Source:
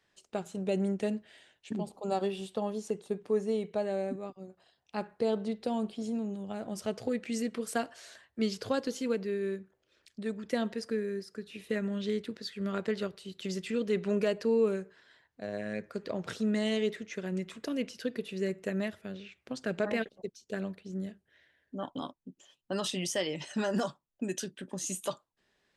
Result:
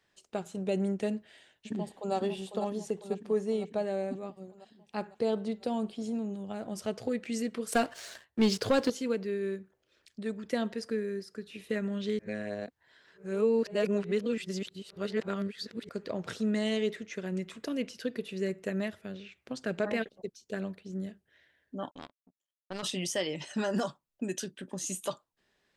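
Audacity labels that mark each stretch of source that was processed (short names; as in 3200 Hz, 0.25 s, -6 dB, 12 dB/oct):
1.150000	2.140000	echo throw 0.5 s, feedback 65%, level -7 dB
7.720000	8.900000	sample leveller passes 2
12.190000	15.890000	reverse
21.910000	22.830000	power-law curve exponent 2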